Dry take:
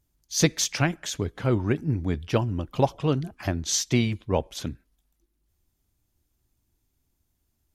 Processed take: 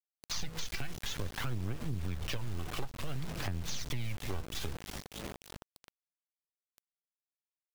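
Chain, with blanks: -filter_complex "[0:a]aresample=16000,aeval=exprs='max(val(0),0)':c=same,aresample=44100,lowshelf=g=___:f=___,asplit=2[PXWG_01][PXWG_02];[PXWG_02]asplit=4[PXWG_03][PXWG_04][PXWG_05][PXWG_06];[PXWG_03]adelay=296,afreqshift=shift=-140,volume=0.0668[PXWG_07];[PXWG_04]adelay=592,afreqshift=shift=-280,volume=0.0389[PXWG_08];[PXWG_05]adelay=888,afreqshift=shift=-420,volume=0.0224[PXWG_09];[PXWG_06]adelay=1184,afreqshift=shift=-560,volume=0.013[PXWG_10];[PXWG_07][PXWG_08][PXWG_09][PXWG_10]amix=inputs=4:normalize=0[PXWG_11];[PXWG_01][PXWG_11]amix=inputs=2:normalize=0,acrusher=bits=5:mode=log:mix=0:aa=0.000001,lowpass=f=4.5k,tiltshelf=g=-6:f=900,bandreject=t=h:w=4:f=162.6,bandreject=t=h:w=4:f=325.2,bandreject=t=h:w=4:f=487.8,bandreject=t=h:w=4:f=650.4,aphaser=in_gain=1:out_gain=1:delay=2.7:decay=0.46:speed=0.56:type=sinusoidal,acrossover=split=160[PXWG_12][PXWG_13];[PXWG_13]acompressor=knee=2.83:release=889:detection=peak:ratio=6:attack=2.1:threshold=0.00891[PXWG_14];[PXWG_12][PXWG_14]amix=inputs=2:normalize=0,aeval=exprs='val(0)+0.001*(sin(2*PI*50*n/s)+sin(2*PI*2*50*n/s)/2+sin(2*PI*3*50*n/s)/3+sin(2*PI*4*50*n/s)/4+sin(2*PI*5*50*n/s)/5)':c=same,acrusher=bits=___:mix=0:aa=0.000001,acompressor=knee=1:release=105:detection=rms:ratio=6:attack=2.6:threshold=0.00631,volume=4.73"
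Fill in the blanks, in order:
-4, 220, 8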